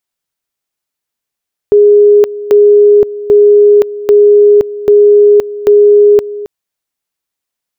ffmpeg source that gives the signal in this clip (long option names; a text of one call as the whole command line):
ffmpeg -f lavfi -i "aevalsrc='pow(10,(-1.5-16.5*gte(mod(t,0.79),0.52))/20)*sin(2*PI*413*t)':duration=4.74:sample_rate=44100" out.wav